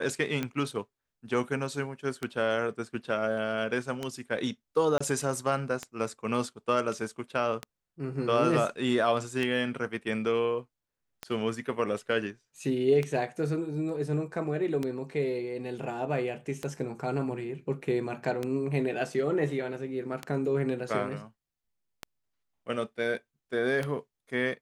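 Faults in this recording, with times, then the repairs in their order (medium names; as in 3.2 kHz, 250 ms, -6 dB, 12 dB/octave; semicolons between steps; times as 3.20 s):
tick 33 1/3 rpm -17 dBFS
4.98–5.00 s: dropout 25 ms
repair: de-click; interpolate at 4.98 s, 25 ms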